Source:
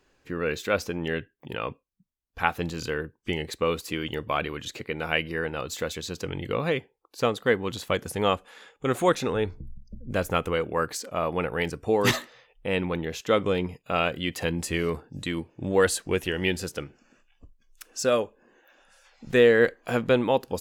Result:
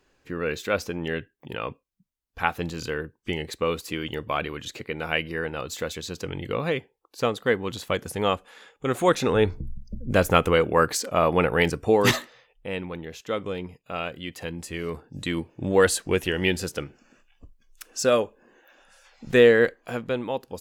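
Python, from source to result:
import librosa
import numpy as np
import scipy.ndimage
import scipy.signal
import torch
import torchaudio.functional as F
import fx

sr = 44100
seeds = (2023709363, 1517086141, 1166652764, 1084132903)

y = fx.gain(x, sr, db=fx.line((8.97, 0.0), (9.43, 6.5), (11.68, 6.5), (12.87, -6.0), (14.73, -6.0), (15.32, 2.5), (19.48, 2.5), (20.02, -6.0)))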